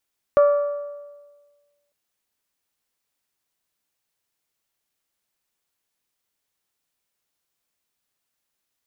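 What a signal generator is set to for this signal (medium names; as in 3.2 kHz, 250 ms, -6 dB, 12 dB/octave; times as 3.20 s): metal hit bell, lowest mode 579 Hz, decay 1.43 s, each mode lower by 11 dB, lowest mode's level -10 dB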